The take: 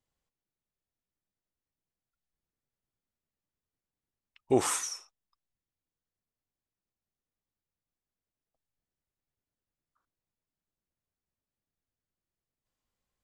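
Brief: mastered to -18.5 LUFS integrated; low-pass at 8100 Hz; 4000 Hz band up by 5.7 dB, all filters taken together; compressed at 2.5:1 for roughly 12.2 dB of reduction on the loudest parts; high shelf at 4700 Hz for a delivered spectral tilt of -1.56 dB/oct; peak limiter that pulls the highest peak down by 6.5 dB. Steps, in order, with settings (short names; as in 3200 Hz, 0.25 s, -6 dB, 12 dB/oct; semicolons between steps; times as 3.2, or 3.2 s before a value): LPF 8100 Hz; bell 4000 Hz +3.5 dB; high shelf 4700 Hz +8 dB; compressor 2.5:1, threshold -38 dBFS; gain +21 dB; limiter -7.5 dBFS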